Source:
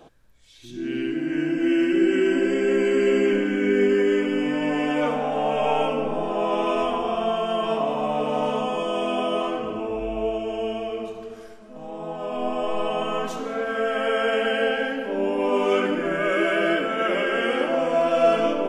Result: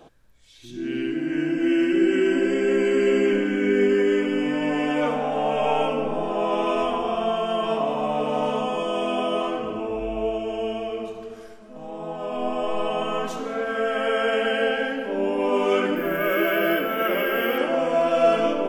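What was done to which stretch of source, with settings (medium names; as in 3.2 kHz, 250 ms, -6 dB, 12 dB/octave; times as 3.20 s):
15.96–17.58 s: careless resampling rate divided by 3×, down filtered, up hold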